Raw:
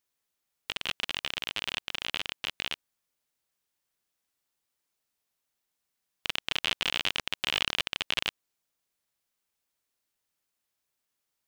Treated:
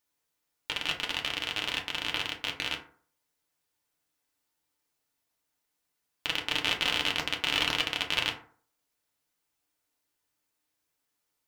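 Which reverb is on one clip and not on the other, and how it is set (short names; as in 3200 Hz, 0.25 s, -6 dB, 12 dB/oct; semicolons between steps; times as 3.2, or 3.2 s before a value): FDN reverb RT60 0.49 s, low-frequency decay 0.95×, high-frequency decay 0.45×, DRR 0 dB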